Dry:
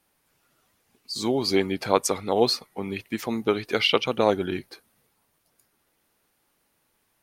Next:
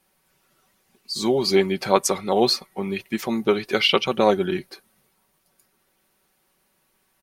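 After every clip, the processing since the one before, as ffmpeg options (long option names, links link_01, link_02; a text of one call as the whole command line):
ffmpeg -i in.wav -af "aecho=1:1:5.3:0.53,volume=2dB" out.wav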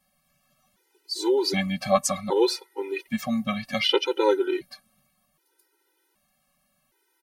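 ffmpeg -i in.wav -af "afftfilt=real='re*gt(sin(2*PI*0.65*pts/sr)*(1-2*mod(floor(b*sr/1024/260),2)),0)':imag='im*gt(sin(2*PI*0.65*pts/sr)*(1-2*mod(floor(b*sr/1024/260),2)),0)':win_size=1024:overlap=0.75" out.wav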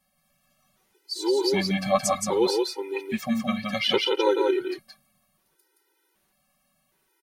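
ffmpeg -i in.wav -af "aecho=1:1:172:0.708,volume=-1.5dB" out.wav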